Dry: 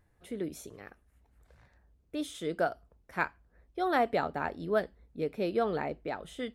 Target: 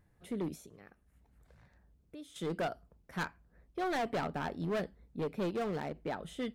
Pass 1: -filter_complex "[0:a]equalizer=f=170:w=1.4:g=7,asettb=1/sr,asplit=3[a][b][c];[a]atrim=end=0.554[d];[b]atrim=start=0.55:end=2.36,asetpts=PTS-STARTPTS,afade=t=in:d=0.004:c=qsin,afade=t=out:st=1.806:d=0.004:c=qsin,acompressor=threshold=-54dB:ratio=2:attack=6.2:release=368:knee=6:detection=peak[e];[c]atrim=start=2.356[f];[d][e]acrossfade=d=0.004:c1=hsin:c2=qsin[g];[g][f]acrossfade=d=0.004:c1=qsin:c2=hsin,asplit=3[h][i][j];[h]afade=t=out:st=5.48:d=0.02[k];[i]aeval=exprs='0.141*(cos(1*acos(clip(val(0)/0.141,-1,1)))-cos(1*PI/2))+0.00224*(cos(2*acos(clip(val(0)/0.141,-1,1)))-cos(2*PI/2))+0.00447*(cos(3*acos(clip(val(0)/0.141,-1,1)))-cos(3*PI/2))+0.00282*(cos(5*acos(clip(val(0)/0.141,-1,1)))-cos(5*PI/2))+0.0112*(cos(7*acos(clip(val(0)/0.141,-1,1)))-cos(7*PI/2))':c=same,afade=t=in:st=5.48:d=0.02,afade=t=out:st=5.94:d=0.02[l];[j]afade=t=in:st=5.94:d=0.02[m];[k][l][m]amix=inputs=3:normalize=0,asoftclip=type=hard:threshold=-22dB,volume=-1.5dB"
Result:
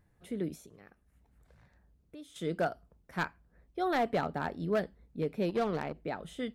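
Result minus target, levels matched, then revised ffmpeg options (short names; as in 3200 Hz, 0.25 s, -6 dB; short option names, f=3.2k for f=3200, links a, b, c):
hard clip: distortion -9 dB
-filter_complex "[0:a]equalizer=f=170:w=1.4:g=7,asettb=1/sr,asplit=3[a][b][c];[a]atrim=end=0.554[d];[b]atrim=start=0.55:end=2.36,asetpts=PTS-STARTPTS,afade=t=in:d=0.004:c=qsin,afade=t=out:st=1.806:d=0.004:c=qsin,acompressor=threshold=-54dB:ratio=2:attack=6.2:release=368:knee=6:detection=peak[e];[c]atrim=start=2.356[f];[d][e]acrossfade=d=0.004:c1=hsin:c2=qsin[g];[g][f]acrossfade=d=0.004:c1=qsin:c2=hsin,asplit=3[h][i][j];[h]afade=t=out:st=5.48:d=0.02[k];[i]aeval=exprs='0.141*(cos(1*acos(clip(val(0)/0.141,-1,1)))-cos(1*PI/2))+0.00224*(cos(2*acos(clip(val(0)/0.141,-1,1)))-cos(2*PI/2))+0.00447*(cos(3*acos(clip(val(0)/0.141,-1,1)))-cos(3*PI/2))+0.00282*(cos(5*acos(clip(val(0)/0.141,-1,1)))-cos(5*PI/2))+0.0112*(cos(7*acos(clip(val(0)/0.141,-1,1)))-cos(7*PI/2))':c=same,afade=t=in:st=5.48:d=0.02,afade=t=out:st=5.94:d=0.02[l];[j]afade=t=in:st=5.94:d=0.02[m];[k][l][m]amix=inputs=3:normalize=0,asoftclip=type=hard:threshold=-29dB,volume=-1.5dB"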